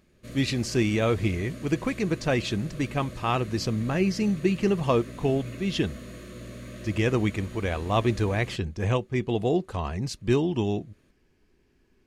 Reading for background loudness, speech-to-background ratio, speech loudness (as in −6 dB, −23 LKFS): −41.5 LKFS, 14.5 dB, −27.0 LKFS